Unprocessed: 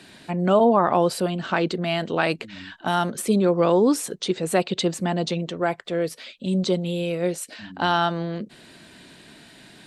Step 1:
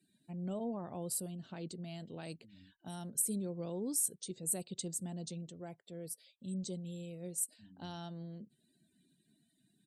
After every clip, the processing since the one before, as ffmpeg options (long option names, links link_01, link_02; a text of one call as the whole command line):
ffmpeg -i in.wav -af "lowshelf=frequency=490:gain=-8.5,afftdn=noise_reduction=22:noise_floor=-46,firequalizer=gain_entry='entry(100,0);entry(340,-12);entry(1200,-28);entry(8600,5)':delay=0.05:min_phase=1,volume=-4.5dB" out.wav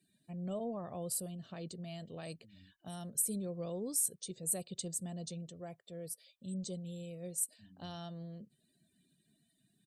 ffmpeg -i in.wav -af "aecho=1:1:1.7:0.38" out.wav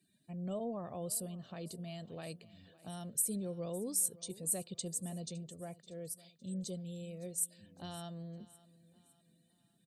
ffmpeg -i in.wav -af "aecho=1:1:560|1120|1680:0.1|0.042|0.0176" out.wav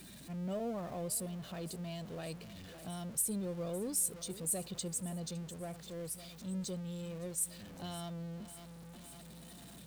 ffmpeg -i in.wav -af "aeval=exprs='val(0)+0.5*0.00422*sgn(val(0))':channel_layout=same,aeval=exprs='val(0)+0.000708*(sin(2*PI*60*n/s)+sin(2*PI*2*60*n/s)/2+sin(2*PI*3*60*n/s)/3+sin(2*PI*4*60*n/s)/4+sin(2*PI*5*60*n/s)/5)':channel_layout=same,asoftclip=type=tanh:threshold=-23dB" out.wav